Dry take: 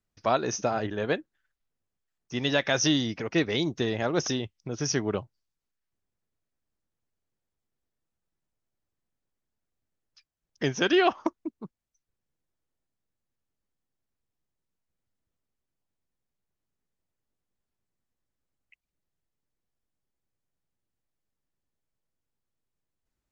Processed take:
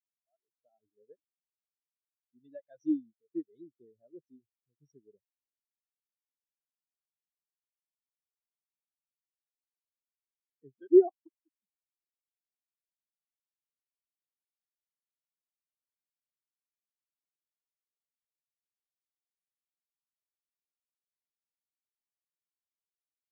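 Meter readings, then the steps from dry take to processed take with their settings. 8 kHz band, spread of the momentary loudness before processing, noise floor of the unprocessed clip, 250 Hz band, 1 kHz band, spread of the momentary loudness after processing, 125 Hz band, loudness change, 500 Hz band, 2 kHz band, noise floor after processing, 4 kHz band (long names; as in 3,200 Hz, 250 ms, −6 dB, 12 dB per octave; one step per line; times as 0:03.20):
can't be measured, 12 LU, below −85 dBFS, −5.0 dB, −20.0 dB, 18 LU, below −30 dB, −0.5 dB, −3.0 dB, below −40 dB, below −85 dBFS, below −40 dB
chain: fade in at the beginning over 1.02 s
every bin expanded away from the loudest bin 4 to 1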